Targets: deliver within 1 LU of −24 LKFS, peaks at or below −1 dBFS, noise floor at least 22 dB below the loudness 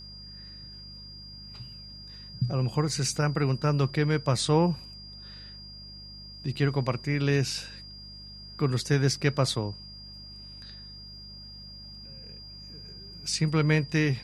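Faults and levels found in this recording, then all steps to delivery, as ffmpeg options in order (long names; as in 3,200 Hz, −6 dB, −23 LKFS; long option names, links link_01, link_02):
mains hum 50 Hz; hum harmonics up to 200 Hz; level of the hum −47 dBFS; interfering tone 4,800 Hz; level of the tone −44 dBFS; integrated loudness −27.0 LKFS; sample peak −9.5 dBFS; target loudness −24.0 LKFS
→ -af "bandreject=frequency=50:width_type=h:width=4,bandreject=frequency=100:width_type=h:width=4,bandreject=frequency=150:width_type=h:width=4,bandreject=frequency=200:width_type=h:width=4"
-af "bandreject=frequency=4800:width=30"
-af "volume=3dB"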